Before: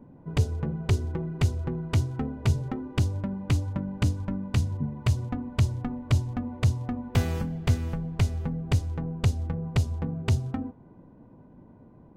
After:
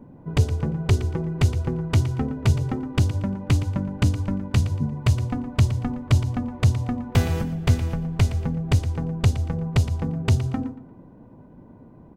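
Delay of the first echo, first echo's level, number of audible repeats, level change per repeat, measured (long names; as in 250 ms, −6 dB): 116 ms, −13.0 dB, 3, −11.0 dB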